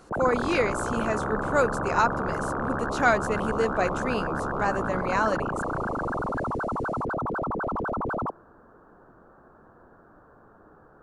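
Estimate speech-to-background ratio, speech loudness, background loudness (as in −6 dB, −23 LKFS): 2.0 dB, −27.5 LKFS, −29.5 LKFS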